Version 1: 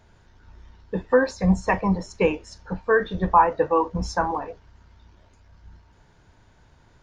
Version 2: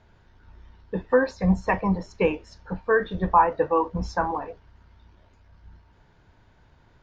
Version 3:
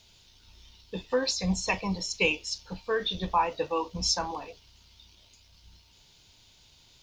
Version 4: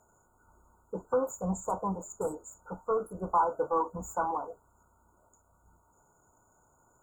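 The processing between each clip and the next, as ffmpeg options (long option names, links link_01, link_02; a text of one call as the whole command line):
ffmpeg -i in.wav -af "lowpass=4500,volume=-1.5dB" out.wav
ffmpeg -i in.wav -af "aexciter=amount=14.5:drive=5.3:freq=2600,volume=-7.5dB" out.wav
ffmpeg -i in.wav -filter_complex "[0:a]asplit=2[link_01][link_02];[link_02]highpass=frequency=720:poles=1,volume=18dB,asoftclip=type=tanh:threshold=-11dB[link_03];[link_01][link_03]amix=inputs=2:normalize=0,lowpass=frequency=2700:poles=1,volume=-6dB,afftfilt=real='re*(1-between(b*sr/4096,1500,6700))':imag='im*(1-between(b*sr/4096,1500,6700))':win_size=4096:overlap=0.75,volume=-5.5dB" out.wav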